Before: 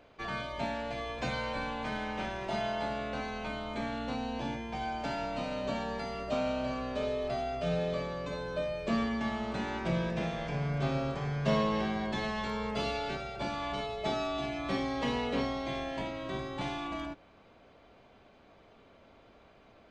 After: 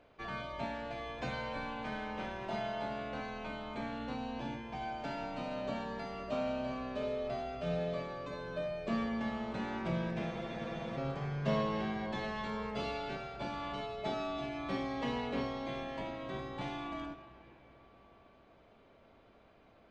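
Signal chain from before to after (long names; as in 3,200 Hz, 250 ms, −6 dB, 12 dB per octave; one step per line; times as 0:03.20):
high-shelf EQ 5,600 Hz −8.5 dB
comb and all-pass reverb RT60 4.8 s, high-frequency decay 0.6×, pre-delay 30 ms, DRR 11.5 dB
frozen spectrum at 0:10.33, 0.64 s
level −4 dB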